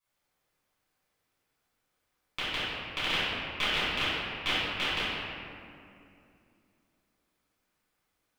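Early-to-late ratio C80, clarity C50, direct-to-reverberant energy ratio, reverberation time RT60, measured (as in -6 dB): -2.0 dB, -4.5 dB, -14.5 dB, 2.5 s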